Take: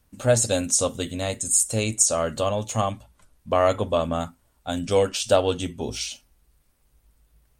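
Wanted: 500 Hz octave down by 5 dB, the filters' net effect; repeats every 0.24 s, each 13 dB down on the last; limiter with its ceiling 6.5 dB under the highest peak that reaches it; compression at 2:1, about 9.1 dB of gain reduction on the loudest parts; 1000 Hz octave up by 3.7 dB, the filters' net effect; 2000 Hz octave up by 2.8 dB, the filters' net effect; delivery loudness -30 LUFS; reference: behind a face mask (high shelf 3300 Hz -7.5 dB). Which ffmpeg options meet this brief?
-af "equalizer=f=500:t=o:g=-9,equalizer=f=1k:t=o:g=7.5,equalizer=f=2k:t=o:g=4.5,acompressor=threshold=-31dB:ratio=2,alimiter=limit=-20dB:level=0:latency=1,highshelf=f=3.3k:g=-7.5,aecho=1:1:240|480|720:0.224|0.0493|0.0108,volume=4dB"

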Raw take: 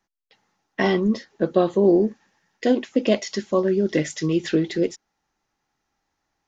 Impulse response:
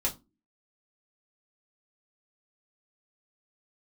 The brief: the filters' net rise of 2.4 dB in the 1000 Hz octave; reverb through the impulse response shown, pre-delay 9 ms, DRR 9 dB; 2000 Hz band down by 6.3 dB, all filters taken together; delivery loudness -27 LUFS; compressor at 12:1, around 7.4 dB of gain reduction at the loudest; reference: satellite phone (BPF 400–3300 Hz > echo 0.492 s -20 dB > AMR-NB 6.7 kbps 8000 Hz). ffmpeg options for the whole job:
-filter_complex "[0:a]equalizer=f=1k:t=o:g=5.5,equalizer=f=2k:t=o:g=-8,acompressor=threshold=-19dB:ratio=12,asplit=2[a][b];[1:a]atrim=start_sample=2205,adelay=9[c];[b][c]afir=irnorm=-1:irlink=0,volume=-14.5dB[d];[a][d]amix=inputs=2:normalize=0,highpass=400,lowpass=3.3k,aecho=1:1:492:0.1,volume=3.5dB" -ar 8000 -c:a libopencore_amrnb -b:a 6700

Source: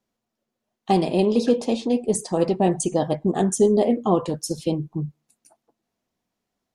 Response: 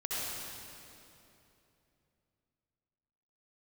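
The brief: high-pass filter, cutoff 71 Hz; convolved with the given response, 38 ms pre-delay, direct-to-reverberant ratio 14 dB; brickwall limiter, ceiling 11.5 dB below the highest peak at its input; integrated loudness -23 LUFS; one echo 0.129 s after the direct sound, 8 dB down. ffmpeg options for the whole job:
-filter_complex "[0:a]highpass=71,alimiter=limit=-17.5dB:level=0:latency=1,aecho=1:1:129:0.398,asplit=2[a][b];[1:a]atrim=start_sample=2205,adelay=38[c];[b][c]afir=irnorm=-1:irlink=0,volume=-19.5dB[d];[a][d]amix=inputs=2:normalize=0,volume=3.5dB"

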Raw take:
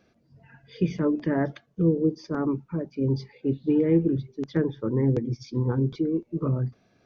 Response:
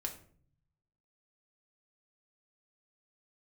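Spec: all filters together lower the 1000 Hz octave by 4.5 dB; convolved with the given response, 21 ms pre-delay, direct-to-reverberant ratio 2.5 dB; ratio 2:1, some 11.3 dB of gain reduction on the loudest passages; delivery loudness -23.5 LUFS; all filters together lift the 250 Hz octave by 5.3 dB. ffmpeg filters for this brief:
-filter_complex "[0:a]equalizer=f=250:t=o:g=7.5,equalizer=f=1k:t=o:g=-7,acompressor=threshold=-35dB:ratio=2,asplit=2[a][b];[1:a]atrim=start_sample=2205,adelay=21[c];[b][c]afir=irnorm=-1:irlink=0,volume=-2dB[d];[a][d]amix=inputs=2:normalize=0,volume=6dB"

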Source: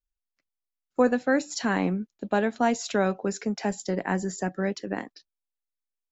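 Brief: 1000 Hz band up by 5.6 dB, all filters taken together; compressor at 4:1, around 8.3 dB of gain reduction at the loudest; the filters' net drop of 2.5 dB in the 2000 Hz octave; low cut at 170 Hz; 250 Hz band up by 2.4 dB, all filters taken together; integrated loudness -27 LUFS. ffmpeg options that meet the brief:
-af "highpass=170,equalizer=f=250:t=o:g=4,equalizer=f=1k:t=o:g=9,equalizer=f=2k:t=o:g=-7.5,acompressor=threshold=-22dB:ratio=4,volume=2dB"

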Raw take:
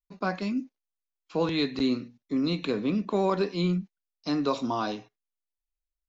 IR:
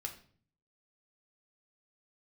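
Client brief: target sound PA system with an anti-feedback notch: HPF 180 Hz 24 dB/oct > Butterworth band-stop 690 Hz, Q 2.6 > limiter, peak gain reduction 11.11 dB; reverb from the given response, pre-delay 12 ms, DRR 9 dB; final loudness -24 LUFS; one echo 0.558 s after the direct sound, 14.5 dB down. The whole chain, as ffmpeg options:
-filter_complex "[0:a]aecho=1:1:558:0.188,asplit=2[a][b];[1:a]atrim=start_sample=2205,adelay=12[c];[b][c]afir=irnorm=-1:irlink=0,volume=-7.5dB[d];[a][d]amix=inputs=2:normalize=0,highpass=f=180:w=0.5412,highpass=f=180:w=1.3066,asuperstop=centerf=690:order=8:qfactor=2.6,volume=11dB,alimiter=limit=-14.5dB:level=0:latency=1"

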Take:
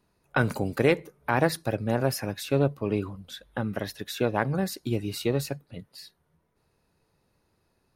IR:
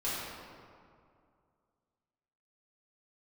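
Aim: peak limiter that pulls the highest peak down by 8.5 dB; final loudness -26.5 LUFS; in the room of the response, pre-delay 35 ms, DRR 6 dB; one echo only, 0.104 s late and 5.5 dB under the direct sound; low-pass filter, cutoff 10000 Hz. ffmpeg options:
-filter_complex "[0:a]lowpass=10k,alimiter=limit=-17dB:level=0:latency=1,aecho=1:1:104:0.531,asplit=2[a][b];[1:a]atrim=start_sample=2205,adelay=35[c];[b][c]afir=irnorm=-1:irlink=0,volume=-12.5dB[d];[a][d]amix=inputs=2:normalize=0,volume=3dB"

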